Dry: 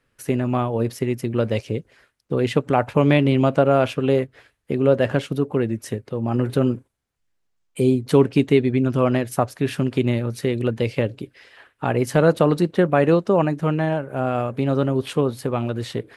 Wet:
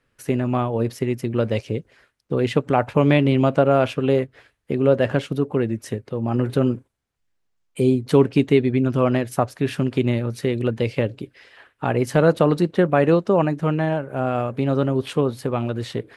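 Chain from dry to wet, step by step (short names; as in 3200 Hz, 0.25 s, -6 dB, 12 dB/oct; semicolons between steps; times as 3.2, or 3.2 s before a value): high shelf 9300 Hz -5.5 dB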